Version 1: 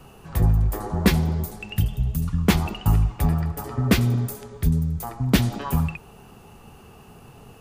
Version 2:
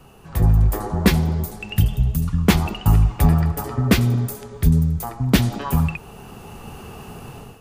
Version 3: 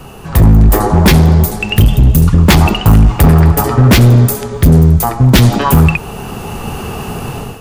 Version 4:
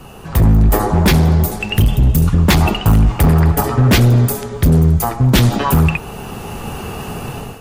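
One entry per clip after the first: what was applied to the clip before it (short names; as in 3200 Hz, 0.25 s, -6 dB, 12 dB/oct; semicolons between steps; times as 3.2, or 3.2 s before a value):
AGC gain up to 11 dB; gain -1 dB
in parallel at +1.5 dB: limiter -12 dBFS, peak gain reduction 10 dB; on the sum: hard clip -11 dBFS, distortion -10 dB; gain +8.5 dB
gain -4.5 dB; AAC 48 kbps 44100 Hz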